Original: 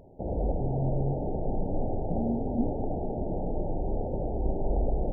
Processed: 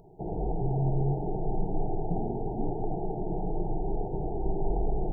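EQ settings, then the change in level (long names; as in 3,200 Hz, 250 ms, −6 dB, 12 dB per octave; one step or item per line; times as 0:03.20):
phaser with its sweep stopped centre 370 Hz, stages 8
+2.5 dB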